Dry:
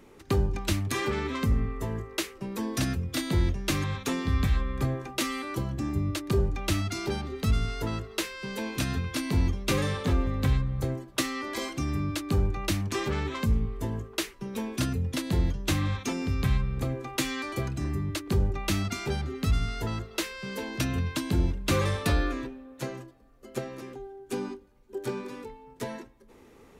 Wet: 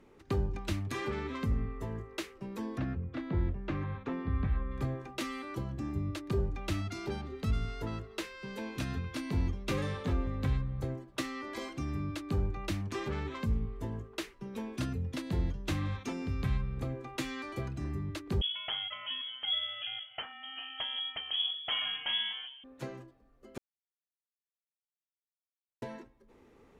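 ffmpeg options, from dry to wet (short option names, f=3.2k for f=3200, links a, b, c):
-filter_complex "[0:a]asplit=3[a][b][c];[a]afade=t=out:st=2.76:d=0.02[d];[b]lowpass=1.8k,afade=t=in:st=2.76:d=0.02,afade=t=out:st=4.7:d=0.02[e];[c]afade=t=in:st=4.7:d=0.02[f];[d][e][f]amix=inputs=3:normalize=0,asettb=1/sr,asplit=3[g][h][i];[g]atrim=end=18.414[j];[h]atrim=start=18.41:end=22.64,asetpts=PTS-STARTPTS,afade=t=in:d=0.004:c=qsin,afade=t=out:st=4.226:d=0.004:c=qsin,lowpass=f=2.9k:t=q:w=0.5098,lowpass=f=2.9k:t=q:w=0.6013,lowpass=f=2.9k:t=q:w=0.9,lowpass=f=2.9k:t=q:w=2.563,afreqshift=-3400[k];[i]atrim=start=22.636[l];[j][k]acrossfade=d=0.004:c1=hsin:c2=qsin[m];[m][l]acrossfade=d=0.004:c1=qsin:c2=hsin,asplit=3[n][o][p];[n]atrim=end=23.58,asetpts=PTS-STARTPTS,afade=t=out:st=23.576:d=0.004:c=hsin[q];[o]atrim=start=23.58:end=25.82,asetpts=PTS-STARTPTS,volume=0[r];[p]atrim=start=25.82,asetpts=PTS-STARTPTS,afade=t=in:d=0.004:c=hsin[s];[q][r][s]concat=n=3:v=0:a=1,aemphasis=mode=reproduction:type=cd,volume=-6.5dB"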